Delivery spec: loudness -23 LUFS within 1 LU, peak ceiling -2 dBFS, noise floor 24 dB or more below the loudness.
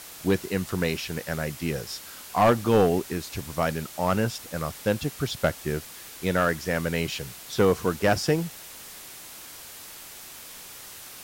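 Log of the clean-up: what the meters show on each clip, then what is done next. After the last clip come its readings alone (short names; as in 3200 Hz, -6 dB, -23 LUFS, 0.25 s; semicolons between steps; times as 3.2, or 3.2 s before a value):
clipped 0.3%; flat tops at -13.0 dBFS; noise floor -43 dBFS; noise floor target -51 dBFS; loudness -26.5 LUFS; peak -13.0 dBFS; loudness target -23.0 LUFS
-> clip repair -13 dBFS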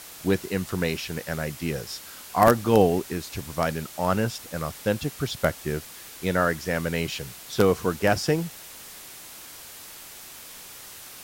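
clipped 0.0%; noise floor -43 dBFS; noise floor target -50 dBFS
-> denoiser 7 dB, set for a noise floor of -43 dBFS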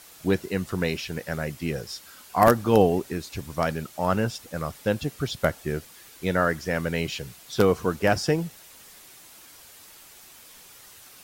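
noise floor -49 dBFS; noise floor target -50 dBFS
-> denoiser 6 dB, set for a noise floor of -49 dBFS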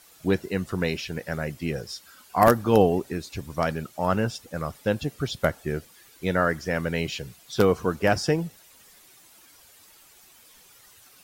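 noise floor -54 dBFS; loudness -26.0 LUFS; peak -3.5 dBFS; loudness target -23.0 LUFS
-> gain +3 dB; limiter -2 dBFS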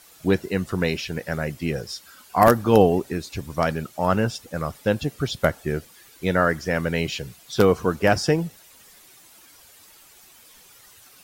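loudness -23.0 LUFS; peak -2.0 dBFS; noise floor -51 dBFS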